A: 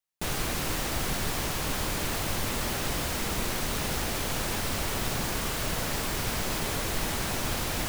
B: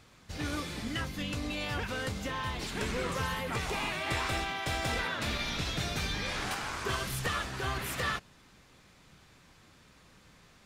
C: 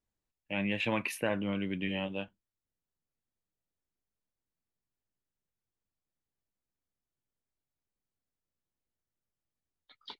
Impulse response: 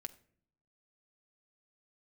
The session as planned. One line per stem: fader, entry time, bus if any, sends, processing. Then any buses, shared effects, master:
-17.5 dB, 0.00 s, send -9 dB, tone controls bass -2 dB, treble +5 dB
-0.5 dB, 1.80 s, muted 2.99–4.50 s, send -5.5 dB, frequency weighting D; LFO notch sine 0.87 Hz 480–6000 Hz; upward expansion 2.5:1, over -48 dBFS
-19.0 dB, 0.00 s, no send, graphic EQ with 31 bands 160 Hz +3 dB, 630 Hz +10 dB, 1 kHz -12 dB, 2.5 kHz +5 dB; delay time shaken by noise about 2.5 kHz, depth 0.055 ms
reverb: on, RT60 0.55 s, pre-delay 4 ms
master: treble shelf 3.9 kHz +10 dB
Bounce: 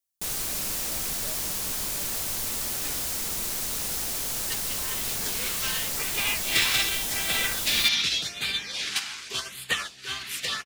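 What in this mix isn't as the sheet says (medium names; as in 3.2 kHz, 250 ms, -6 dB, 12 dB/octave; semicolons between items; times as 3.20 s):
stem A -17.5 dB -> -9.5 dB; stem B: entry 1.80 s -> 2.45 s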